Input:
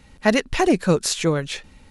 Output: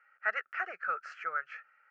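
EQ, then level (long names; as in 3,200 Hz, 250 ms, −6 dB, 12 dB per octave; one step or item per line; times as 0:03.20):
four-pole ladder band-pass 1,400 Hz, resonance 80%
high-frequency loss of the air 170 metres
phaser with its sweep stopped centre 1,000 Hz, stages 6
+4.0 dB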